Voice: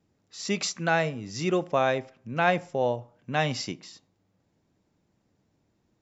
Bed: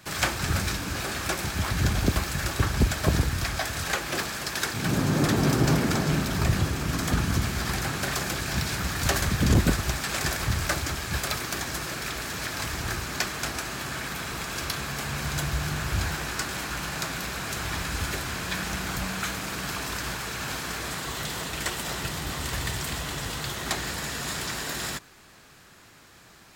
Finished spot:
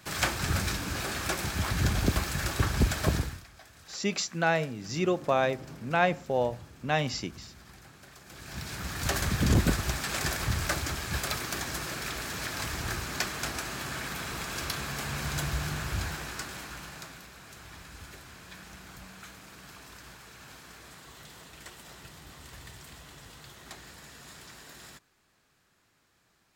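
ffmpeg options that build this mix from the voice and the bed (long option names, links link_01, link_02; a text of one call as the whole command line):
ffmpeg -i stem1.wav -i stem2.wav -filter_complex "[0:a]adelay=3550,volume=-1.5dB[link_01];[1:a]volume=18dB,afade=type=out:start_time=3.05:duration=0.38:silence=0.0891251,afade=type=in:start_time=8.24:duration=1.09:silence=0.0944061,afade=type=out:start_time=15.5:duration=1.78:silence=0.199526[link_02];[link_01][link_02]amix=inputs=2:normalize=0" out.wav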